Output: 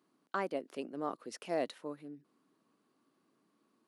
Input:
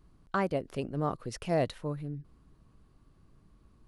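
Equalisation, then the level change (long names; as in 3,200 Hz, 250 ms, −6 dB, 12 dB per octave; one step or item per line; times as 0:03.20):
four-pole ladder high-pass 210 Hz, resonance 40%
low-shelf EQ 330 Hz −10 dB
+4.0 dB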